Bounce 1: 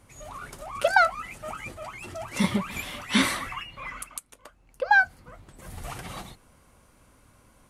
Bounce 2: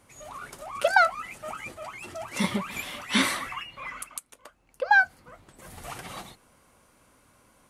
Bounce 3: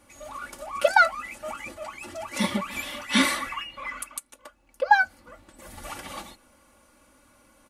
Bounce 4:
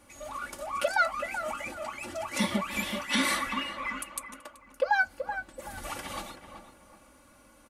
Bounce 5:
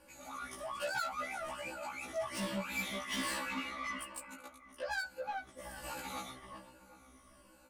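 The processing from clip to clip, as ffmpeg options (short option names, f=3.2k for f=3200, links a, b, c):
-af "lowshelf=f=130:g=-11"
-af "aecho=1:1:3.5:0.71"
-filter_complex "[0:a]alimiter=limit=-16dB:level=0:latency=1:release=127,asplit=2[a][b];[b]adelay=380,lowpass=f=1.6k:p=1,volume=-8dB,asplit=2[c][d];[d]adelay=380,lowpass=f=1.6k:p=1,volume=0.36,asplit=2[e][f];[f]adelay=380,lowpass=f=1.6k:p=1,volume=0.36,asplit=2[g][h];[h]adelay=380,lowpass=f=1.6k:p=1,volume=0.36[i];[c][e][g][i]amix=inputs=4:normalize=0[j];[a][j]amix=inputs=2:normalize=0"
-af "afftfilt=real='re*pow(10,10/40*sin(2*PI*(1.3*log(max(b,1)*sr/1024/100)/log(2)-(-1.2)*(pts-256)/sr)))':imag='im*pow(10,10/40*sin(2*PI*(1.3*log(max(b,1)*sr/1024/100)/log(2)-(-1.2)*(pts-256)/sr)))':win_size=1024:overlap=0.75,asoftclip=type=tanh:threshold=-29dB,afftfilt=real='re*1.73*eq(mod(b,3),0)':imag='im*1.73*eq(mod(b,3),0)':win_size=2048:overlap=0.75,volume=-2.5dB"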